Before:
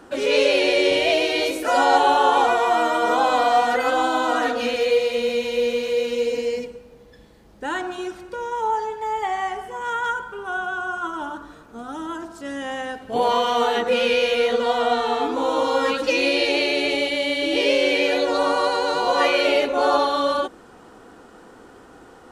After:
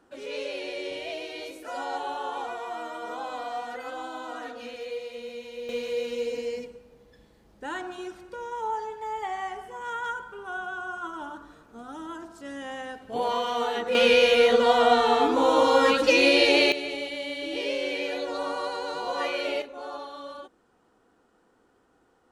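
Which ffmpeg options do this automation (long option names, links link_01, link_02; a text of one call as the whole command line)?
ffmpeg -i in.wav -af "asetnsamples=nb_out_samples=441:pad=0,asendcmd='5.69 volume volume -7.5dB;13.95 volume volume 1dB;16.72 volume volume -10.5dB;19.62 volume volume -19dB',volume=-16dB" out.wav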